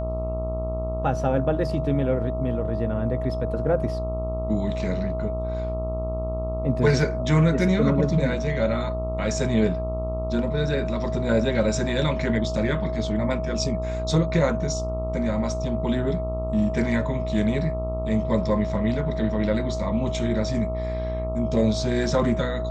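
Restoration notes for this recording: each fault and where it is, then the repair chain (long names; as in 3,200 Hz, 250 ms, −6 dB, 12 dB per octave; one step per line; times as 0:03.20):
mains buzz 60 Hz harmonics 22 −29 dBFS
whistle 640 Hz −29 dBFS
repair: notch filter 640 Hz, Q 30
hum removal 60 Hz, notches 22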